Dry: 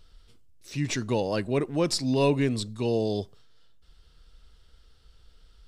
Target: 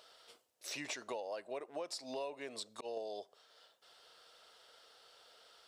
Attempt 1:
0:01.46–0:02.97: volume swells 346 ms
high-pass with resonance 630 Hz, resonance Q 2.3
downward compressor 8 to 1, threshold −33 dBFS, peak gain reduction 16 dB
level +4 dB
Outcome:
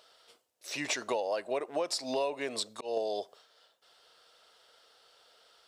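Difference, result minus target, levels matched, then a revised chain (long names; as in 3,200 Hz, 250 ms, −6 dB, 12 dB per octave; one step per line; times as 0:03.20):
downward compressor: peak gain reduction −10 dB
0:01.46–0:02.97: volume swells 346 ms
high-pass with resonance 630 Hz, resonance Q 2.3
downward compressor 8 to 1, threshold −44.5 dBFS, peak gain reduction 26 dB
level +4 dB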